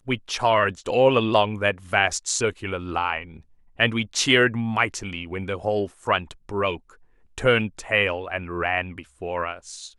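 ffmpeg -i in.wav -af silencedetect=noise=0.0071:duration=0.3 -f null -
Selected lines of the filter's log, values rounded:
silence_start: 3.40
silence_end: 3.79 | silence_duration: 0.39
silence_start: 6.95
silence_end: 7.38 | silence_duration: 0.43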